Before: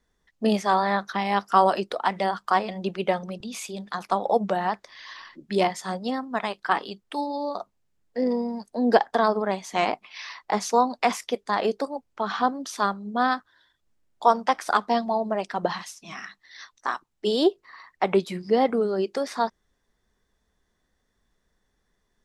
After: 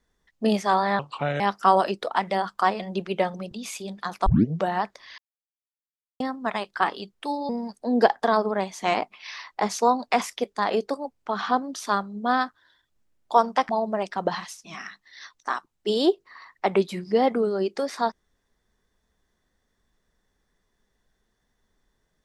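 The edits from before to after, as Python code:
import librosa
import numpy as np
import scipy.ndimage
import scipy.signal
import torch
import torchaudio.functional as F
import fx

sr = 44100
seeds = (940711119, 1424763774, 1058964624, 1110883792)

y = fx.edit(x, sr, fx.speed_span(start_s=0.99, length_s=0.3, speed=0.73),
    fx.tape_start(start_s=4.15, length_s=0.35),
    fx.silence(start_s=5.07, length_s=1.02),
    fx.cut(start_s=7.38, length_s=1.02),
    fx.cut(start_s=14.6, length_s=0.47), tone=tone)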